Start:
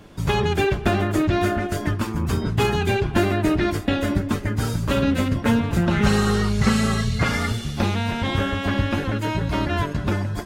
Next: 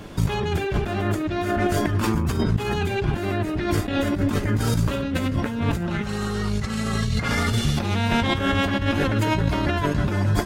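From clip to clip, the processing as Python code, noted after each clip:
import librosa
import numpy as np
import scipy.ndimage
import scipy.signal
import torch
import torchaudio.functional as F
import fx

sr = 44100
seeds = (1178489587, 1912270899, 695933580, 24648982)

y = fx.over_compress(x, sr, threshold_db=-26.0, ratio=-1.0)
y = y * 10.0 ** (3.0 / 20.0)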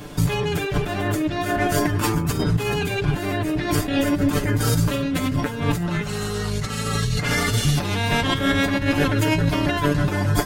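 y = fx.high_shelf(x, sr, hz=6700.0, db=8.5)
y = y + 0.65 * np.pad(y, (int(6.8 * sr / 1000.0), 0))[:len(y)]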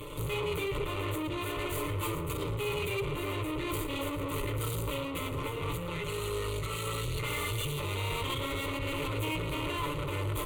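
y = fx.tube_stage(x, sr, drive_db=31.0, bias=0.7)
y = fx.fixed_phaser(y, sr, hz=1100.0, stages=8)
y = y + 10.0 ** (-14.5 / 20.0) * np.pad(y, (int(112 * sr / 1000.0), 0))[:len(y)]
y = y * 10.0 ** (2.5 / 20.0)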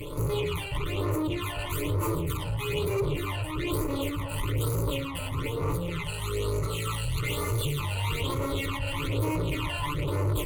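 y = fx.phaser_stages(x, sr, stages=12, low_hz=360.0, high_hz=3300.0, hz=1.1, feedback_pct=25)
y = y * 10.0 ** (5.5 / 20.0)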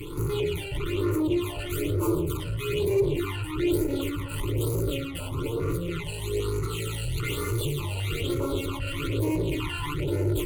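y = fx.small_body(x, sr, hz=(360.0, 1400.0), ring_ms=50, db=11)
y = fx.filter_held_notch(y, sr, hz=2.5, low_hz=610.0, high_hz=1800.0)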